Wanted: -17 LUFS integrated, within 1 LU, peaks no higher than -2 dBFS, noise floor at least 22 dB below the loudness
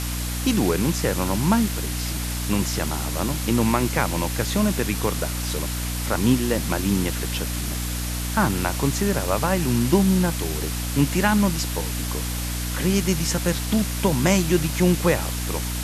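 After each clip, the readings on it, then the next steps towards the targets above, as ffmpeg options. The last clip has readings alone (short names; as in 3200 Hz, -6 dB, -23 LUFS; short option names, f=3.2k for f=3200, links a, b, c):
hum 60 Hz; harmonics up to 300 Hz; hum level -26 dBFS; noise floor -27 dBFS; noise floor target -45 dBFS; loudness -23.0 LUFS; peak -5.0 dBFS; loudness target -17.0 LUFS
-> -af "bandreject=f=60:t=h:w=4,bandreject=f=120:t=h:w=4,bandreject=f=180:t=h:w=4,bandreject=f=240:t=h:w=4,bandreject=f=300:t=h:w=4"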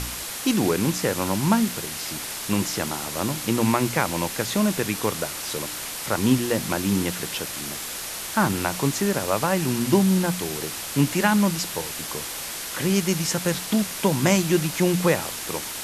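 hum none; noise floor -33 dBFS; noise floor target -46 dBFS
-> -af "afftdn=nr=13:nf=-33"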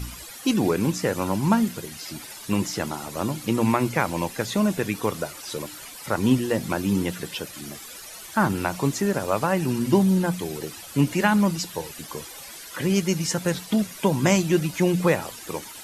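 noise floor -41 dBFS; noise floor target -47 dBFS
-> -af "afftdn=nr=6:nf=-41"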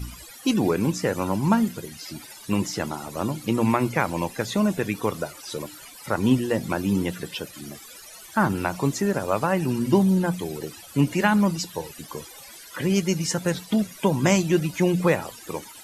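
noise floor -44 dBFS; noise floor target -47 dBFS
-> -af "afftdn=nr=6:nf=-44"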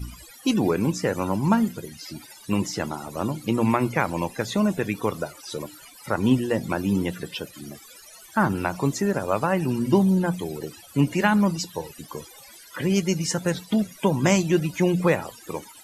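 noise floor -47 dBFS; loudness -24.5 LUFS; peak -5.5 dBFS; loudness target -17.0 LUFS
-> -af "volume=7.5dB,alimiter=limit=-2dB:level=0:latency=1"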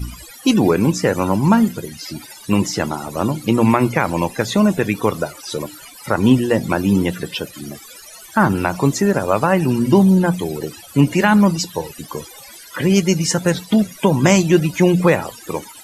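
loudness -17.0 LUFS; peak -2.0 dBFS; noise floor -40 dBFS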